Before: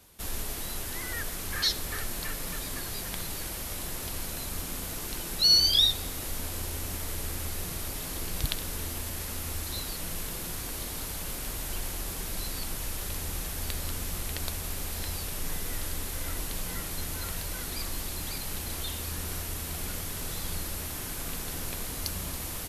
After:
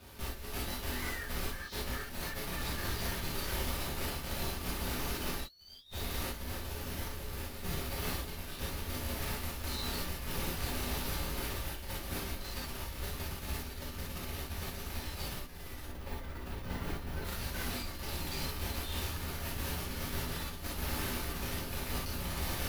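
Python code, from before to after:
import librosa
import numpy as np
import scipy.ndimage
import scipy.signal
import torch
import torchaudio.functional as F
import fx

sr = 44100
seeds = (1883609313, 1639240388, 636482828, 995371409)

y = scipy.ndimage.median_filter(x, 5, mode='constant')
y = fx.peak_eq(y, sr, hz=9200.0, db=-11.5, octaves=2.9, at=(15.85, 17.25))
y = fx.over_compress(y, sr, threshold_db=-38.0, ratio=-0.5)
y = 10.0 ** (-34.0 / 20.0) * np.tanh(y / 10.0 ** (-34.0 / 20.0))
y = fx.rev_gated(y, sr, seeds[0], gate_ms=90, shape='flat', drr_db=-5.0)
y = y * 10.0 ** (-2.5 / 20.0)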